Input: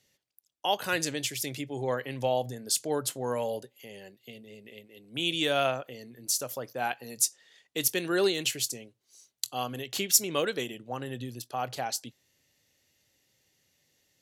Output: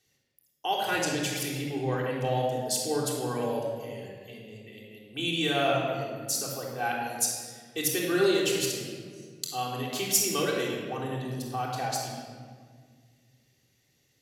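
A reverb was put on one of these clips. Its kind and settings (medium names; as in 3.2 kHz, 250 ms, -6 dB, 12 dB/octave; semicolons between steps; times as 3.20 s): simulated room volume 2800 m³, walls mixed, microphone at 3.6 m; trim -4 dB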